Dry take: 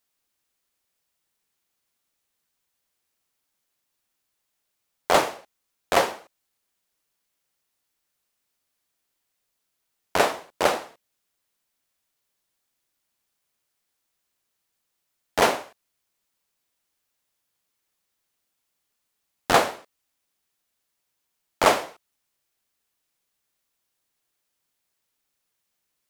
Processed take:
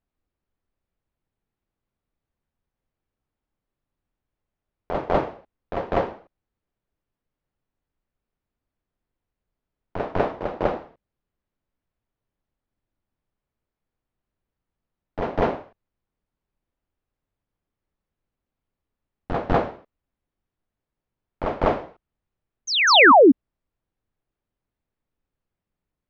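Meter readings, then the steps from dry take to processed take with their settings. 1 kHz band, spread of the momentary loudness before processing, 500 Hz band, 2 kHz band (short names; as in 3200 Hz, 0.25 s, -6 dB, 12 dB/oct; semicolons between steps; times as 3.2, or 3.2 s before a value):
+3.5 dB, 12 LU, +4.5 dB, +7.0 dB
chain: tilt -4 dB/oct; painted sound fall, 22.87–23.32, 240–6700 Hz -6 dBFS; air absorption 200 m; on a send: reverse echo 0.199 s -6 dB; on the sum: gain -4 dB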